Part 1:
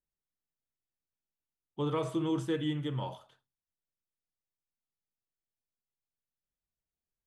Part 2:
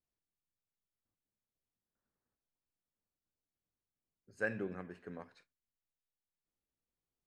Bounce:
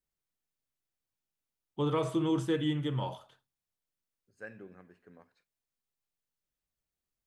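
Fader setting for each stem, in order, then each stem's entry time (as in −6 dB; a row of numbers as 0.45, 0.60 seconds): +2.0, −9.5 decibels; 0.00, 0.00 seconds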